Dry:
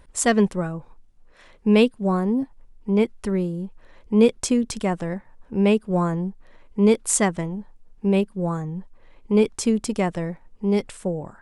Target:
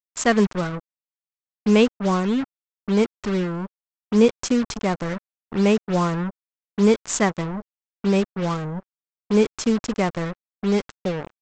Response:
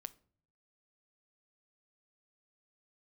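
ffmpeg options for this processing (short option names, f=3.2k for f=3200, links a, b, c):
-af "aresample=16000,acrusher=bits=4:mix=0:aa=0.5,aresample=44100,equalizer=f=1.3k:w=1.6:g=4"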